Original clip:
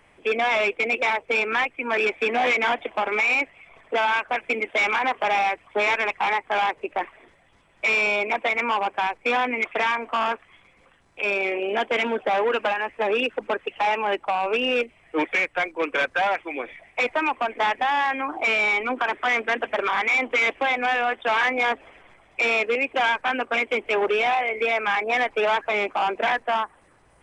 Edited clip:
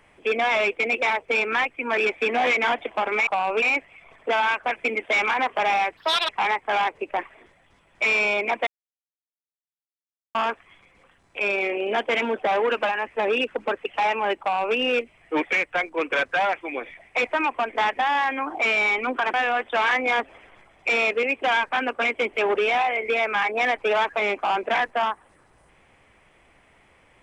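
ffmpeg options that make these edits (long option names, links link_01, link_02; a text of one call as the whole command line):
ffmpeg -i in.wav -filter_complex "[0:a]asplit=8[link_01][link_02][link_03][link_04][link_05][link_06][link_07][link_08];[link_01]atrim=end=3.272[link_09];[link_02]atrim=start=14.228:end=14.582[link_10];[link_03]atrim=start=3.268:end=5.624[link_11];[link_04]atrim=start=5.62:end=6.11,asetpts=PTS-STARTPTS,asetrate=67914,aresample=44100[link_12];[link_05]atrim=start=6.106:end=8.49,asetpts=PTS-STARTPTS,afade=type=out:start_time=2.38:duration=0.004:curve=hsin[link_13];[link_06]atrim=start=8.49:end=10.17,asetpts=PTS-STARTPTS,volume=0[link_14];[link_07]atrim=start=10.17:end=19.162,asetpts=PTS-STARTPTS,afade=type=in:duration=0.004:curve=hsin[link_15];[link_08]atrim=start=20.858[link_16];[link_09][link_10]acrossfade=duration=0.004:curve1=hsin:curve2=hsin[link_17];[link_17][link_11]acrossfade=duration=0.004:curve1=hsin:curve2=hsin[link_18];[link_18][link_12]acrossfade=duration=0.004:curve1=hsin:curve2=hsin[link_19];[link_13][link_14][link_15]concat=n=3:v=0:a=1[link_20];[link_19][link_20]acrossfade=duration=0.004:curve1=hsin:curve2=hsin[link_21];[link_21][link_16]acrossfade=duration=0.004:curve1=hsin:curve2=hsin" out.wav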